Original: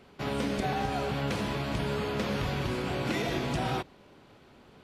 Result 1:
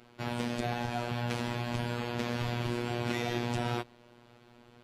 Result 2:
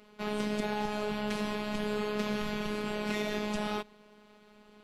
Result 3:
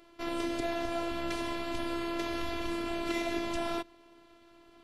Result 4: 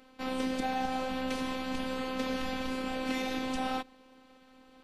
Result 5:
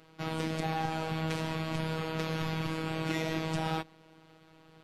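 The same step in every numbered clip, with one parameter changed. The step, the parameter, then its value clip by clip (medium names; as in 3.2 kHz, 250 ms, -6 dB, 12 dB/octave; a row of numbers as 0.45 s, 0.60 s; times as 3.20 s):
robot voice, frequency: 120 Hz, 210 Hz, 340 Hz, 260 Hz, 160 Hz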